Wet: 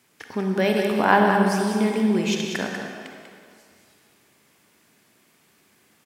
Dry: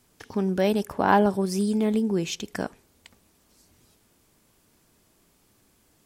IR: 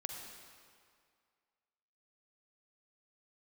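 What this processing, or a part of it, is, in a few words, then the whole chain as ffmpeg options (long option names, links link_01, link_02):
PA in a hall: -filter_complex "[0:a]highpass=140,equalizer=frequency=2100:width_type=o:width=1.2:gain=8,aecho=1:1:193:0.422[link_01];[1:a]atrim=start_sample=2205[link_02];[link_01][link_02]afir=irnorm=-1:irlink=0,volume=2.5dB"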